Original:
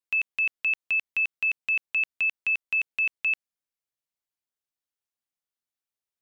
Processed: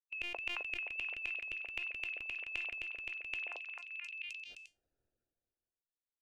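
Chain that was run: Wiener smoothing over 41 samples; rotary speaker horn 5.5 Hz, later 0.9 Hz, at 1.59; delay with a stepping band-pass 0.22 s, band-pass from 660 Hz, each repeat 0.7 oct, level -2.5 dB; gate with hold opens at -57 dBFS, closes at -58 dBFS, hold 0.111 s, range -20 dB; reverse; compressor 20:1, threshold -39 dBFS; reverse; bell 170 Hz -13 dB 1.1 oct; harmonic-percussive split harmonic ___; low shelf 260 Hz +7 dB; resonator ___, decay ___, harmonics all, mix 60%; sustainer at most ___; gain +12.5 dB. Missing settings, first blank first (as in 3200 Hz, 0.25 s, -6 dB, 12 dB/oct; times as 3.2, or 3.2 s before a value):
-10 dB, 350 Hz, 0.22 s, 28 dB/s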